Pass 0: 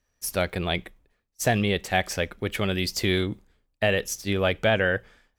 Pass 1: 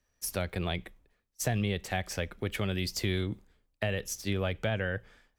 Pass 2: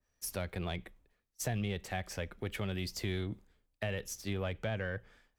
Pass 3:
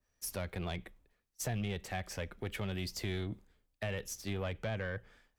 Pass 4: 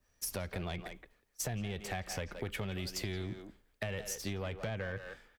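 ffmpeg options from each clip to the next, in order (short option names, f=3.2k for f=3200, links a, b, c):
-filter_complex "[0:a]acrossover=split=160[a][b];[b]acompressor=threshold=-30dB:ratio=3[c];[a][c]amix=inputs=2:normalize=0,volume=-2dB"
-filter_complex "[0:a]asplit=2[a][b];[b]asoftclip=type=tanh:threshold=-30dB,volume=-4.5dB[c];[a][c]amix=inputs=2:normalize=0,adynamicequalizer=threshold=0.00631:dfrequency=2300:dqfactor=0.7:tfrequency=2300:tqfactor=0.7:attack=5:release=100:ratio=0.375:range=1.5:mode=cutabove:tftype=highshelf,volume=-7.5dB"
-af "asoftclip=type=tanh:threshold=-27dB"
-filter_complex "[0:a]asplit=2[a][b];[b]adelay=170,highpass=300,lowpass=3.4k,asoftclip=type=hard:threshold=-37dB,volume=-9dB[c];[a][c]amix=inputs=2:normalize=0,acompressor=threshold=-41dB:ratio=6,volume=6dB"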